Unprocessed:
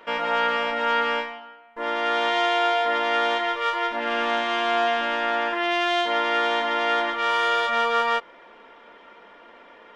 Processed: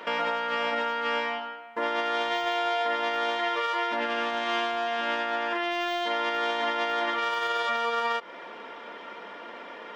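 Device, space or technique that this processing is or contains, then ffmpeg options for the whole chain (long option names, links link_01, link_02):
broadcast voice chain: -af "highpass=frequency=100:width=0.5412,highpass=frequency=100:width=1.3066,deesser=0.7,acompressor=threshold=-28dB:ratio=3,equalizer=frequency=5100:width_type=o:width=0.77:gain=3,alimiter=level_in=1.5dB:limit=-24dB:level=0:latency=1:release=62,volume=-1.5dB,volume=6.5dB"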